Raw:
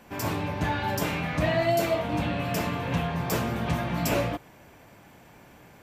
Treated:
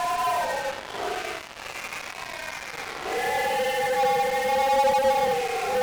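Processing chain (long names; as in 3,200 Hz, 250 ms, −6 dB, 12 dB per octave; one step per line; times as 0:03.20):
three sine waves on the formant tracks
ring modulation 150 Hz
extreme stretch with random phases 5.4×, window 0.10 s, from 0:00.83
in parallel at −4 dB: fuzz pedal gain 42 dB, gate −39 dBFS
on the sum: level −8 dB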